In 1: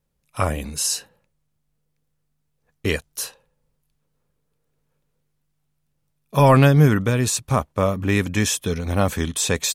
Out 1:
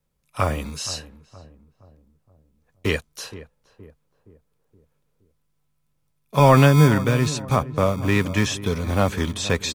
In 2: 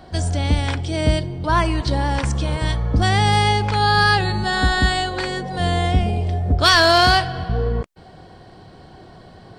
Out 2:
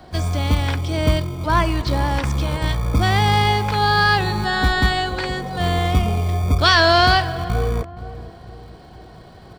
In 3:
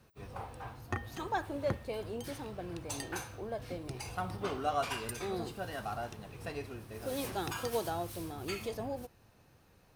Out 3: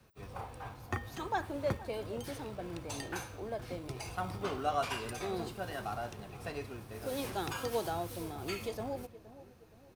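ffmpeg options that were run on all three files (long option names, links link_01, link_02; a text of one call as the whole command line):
ffmpeg -i in.wav -filter_complex "[0:a]acrossover=split=5800[link_01][link_02];[link_02]acompressor=threshold=-45dB:ratio=4:attack=1:release=60[link_03];[link_01][link_03]amix=inputs=2:normalize=0,acrossover=split=200|1200[link_04][link_05][link_06];[link_04]acrusher=samples=38:mix=1:aa=0.000001[link_07];[link_07][link_05][link_06]amix=inputs=3:normalize=0,asplit=2[link_08][link_09];[link_09]adelay=470,lowpass=frequency=910:poles=1,volume=-14.5dB,asplit=2[link_10][link_11];[link_11]adelay=470,lowpass=frequency=910:poles=1,volume=0.5,asplit=2[link_12][link_13];[link_13]adelay=470,lowpass=frequency=910:poles=1,volume=0.5,asplit=2[link_14][link_15];[link_15]adelay=470,lowpass=frequency=910:poles=1,volume=0.5,asplit=2[link_16][link_17];[link_17]adelay=470,lowpass=frequency=910:poles=1,volume=0.5[link_18];[link_08][link_10][link_12][link_14][link_16][link_18]amix=inputs=6:normalize=0" out.wav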